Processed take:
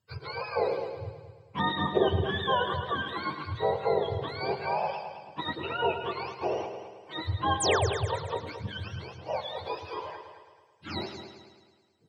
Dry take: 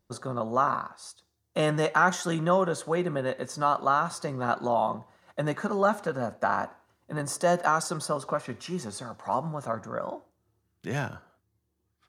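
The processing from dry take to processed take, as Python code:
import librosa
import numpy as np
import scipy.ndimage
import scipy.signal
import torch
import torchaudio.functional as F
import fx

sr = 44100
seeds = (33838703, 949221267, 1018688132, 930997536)

y = fx.octave_mirror(x, sr, pivot_hz=750.0)
y = fx.spec_paint(y, sr, seeds[0], shape='fall', start_s=7.6, length_s=0.27, low_hz=370.0, high_hz=10000.0, level_db=-27.0)
y = fx.echo_heads(y, sr, ms=108, heads='first and second', feedback_pct=47, wet_db=-12.0)
y = y * librosa.db_to_amplitude(-2.0)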